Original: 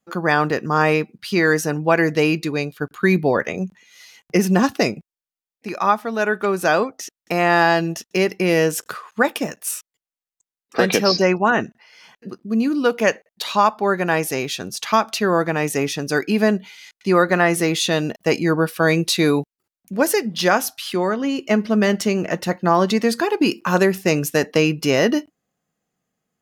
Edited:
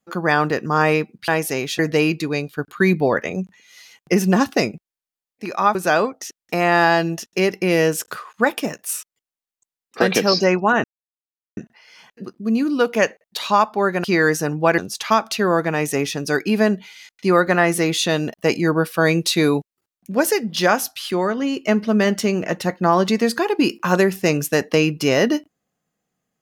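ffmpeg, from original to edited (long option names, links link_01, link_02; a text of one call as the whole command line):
ffmpeg -i in.wav -filter_complex "[0:a]asplit=7[link_01][link_02][link_03][link_04][link_05][link_06][link_07];[link_01]atrim=end=1.282[link_08];[link_02]atrim=start=14.088:end=14.602[link_09];[link_03]atrim=start=2.018:end=5.982[link_10];[link_04]atrim=start=6.528:end=11.62,asetpts=PTS-STARTPTS,afade=type=out:start_time=5.088:duration=0.004:curve=hsin,apad=pad_dur=0.73[link_11];[link_05]atrim=start=11.62:end=14.092,asetpts=PTS-STARTPTS,afade=type=in:duration=0.004:curve=hsin[link_12];[link_06]atrim=start=1.278:end=2.022[link_13];[link_07]atrim=start=14.598[link_14];[link_08][link_09]acrossfade=duration=0.004:curve1=hsin:curve2=hsin[link_15];[link_15][link_10]acrossfade=duration=0.004:curve1=hsin:curve2=hsin[link_16];[link_11][link_12]concat=n=2:v=0:a=1[link_17];[link_16][link_17]acrossfade=duration=0.004:curve1=hsin:curve2=hsin[link_18];[link_18][link_13]acrossfade=duration=0.004:curve1=hsin:curve2=hsin[link_19];[link_19][link_14]acrossfade=duration=0.004:curve1=hsin:curve2=hsin" out.wav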